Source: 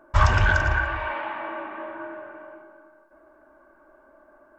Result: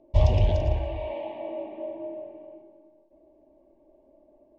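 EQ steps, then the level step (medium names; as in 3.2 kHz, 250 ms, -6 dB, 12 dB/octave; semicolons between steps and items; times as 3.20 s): low-pass 3.1 kHz 12 dB/octave; dynamic bell 620 Hz, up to +7 dB, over -44 dBFS, Q 2.3; Butterworth band-stop 1.4 kHz, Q 0.54; 0.0 dB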